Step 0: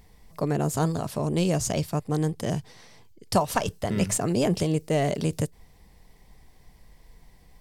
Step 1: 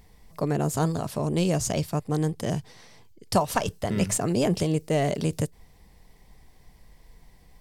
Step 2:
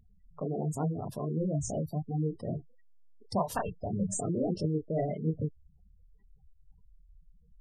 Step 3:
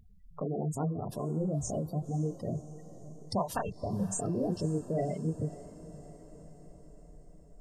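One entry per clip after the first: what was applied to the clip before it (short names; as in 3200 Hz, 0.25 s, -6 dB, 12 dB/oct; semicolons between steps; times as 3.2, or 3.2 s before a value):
nothing audible
chorus voices 2, 1.4 Hz, delay 28 ms, depth 3 ms; spectral gate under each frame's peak -15 dB strong; gain -3.5 dB
in parallel at +2 dB: compressor, threshold -40 dBFS, peak gain reduction 15 dB; on the sum: diffused feedback echo 0.538 s, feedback 60%, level -16 dB; gain -3.5 dB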